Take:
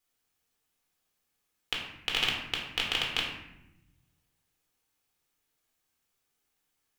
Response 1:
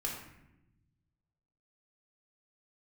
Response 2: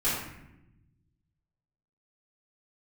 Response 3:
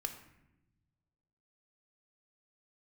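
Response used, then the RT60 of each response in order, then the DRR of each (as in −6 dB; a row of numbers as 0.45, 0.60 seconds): 1; 0.90, 0.90, 0.95 seconds; −2.5, −12.0, 5.5 decibels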